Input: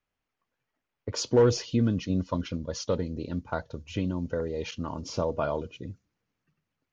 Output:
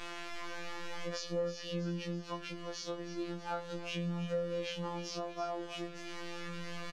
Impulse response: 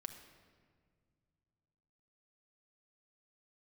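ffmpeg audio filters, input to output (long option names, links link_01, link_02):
-filter_complex "[0:a]aeval=exprs='val(0)+0.5*0.0168*sgn(val(0))':channel_layout=same,afftfilt=real='hypot(re,im)*cos(PI*b)':imag='0':win_size=1024:overlap=0.75,acrusher=bits=7:mix=0:aa=0.000001,acompressor=threshold=-36dB:ratio=10,lowpass=4900,asplit=2[link_01][link_02];[link_02]aecho=0:1:321|642|963|1284|1605|1926:0.224|0.13|0.0753|0.0437|0.0253|0.0147[link_03];[link_01][link_03]amix=inputs=2:normalize=0,flanger=delay=8.5:depth=1.5:regen=-23:speed=0.35:shape=sinusoidal,afftfilt=real='re*2.83*eq(mod(b,8),0)':imag='im*2.83*eq(mod(b,8),0)':win_size=2048:overlap=0.75,volume=1dB"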